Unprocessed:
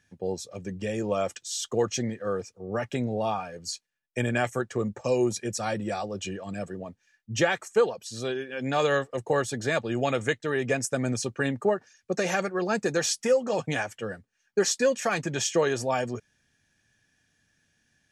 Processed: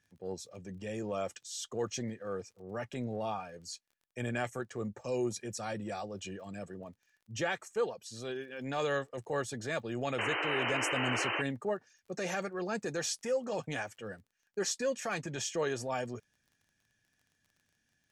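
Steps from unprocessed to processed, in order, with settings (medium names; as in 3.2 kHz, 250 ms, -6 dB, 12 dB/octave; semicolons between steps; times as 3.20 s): painted sound noise, 10.18–11.42 s, 290–3100 Hz -26 dBFS; transient shaper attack -5 dB, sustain 0 dB; crackle 29 per s -47 dBFS; trim -7.5 dB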